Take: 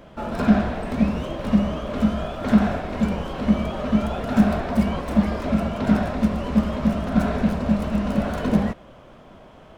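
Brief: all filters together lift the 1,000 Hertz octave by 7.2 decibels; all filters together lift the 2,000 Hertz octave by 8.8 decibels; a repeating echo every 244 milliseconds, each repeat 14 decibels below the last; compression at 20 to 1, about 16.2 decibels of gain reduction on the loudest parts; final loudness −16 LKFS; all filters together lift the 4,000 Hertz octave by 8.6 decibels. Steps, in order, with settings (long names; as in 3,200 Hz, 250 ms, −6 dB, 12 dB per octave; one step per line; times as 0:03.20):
parametric band 1,000 Hz +7.5 dB
parametric band 2,000 Hz +7 dB
parametric band 4,000 Hz +8 dB
downward compressor 20 to 1, threshold −27 dBFS
repeating echo 244 ms, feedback 20%, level −14 dB
level +15.5 dB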